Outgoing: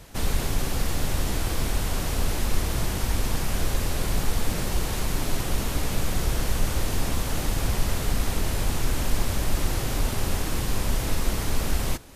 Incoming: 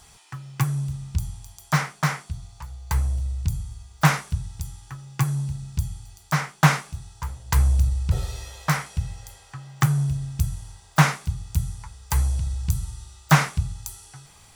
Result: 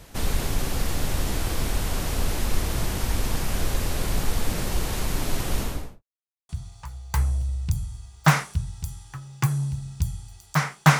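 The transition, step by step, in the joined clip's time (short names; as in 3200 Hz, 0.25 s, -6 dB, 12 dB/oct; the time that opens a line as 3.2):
outgoing
5.57–6.03 studio fade out
6.03–6.49 mute
6.49 switch to incoming from 2.26 s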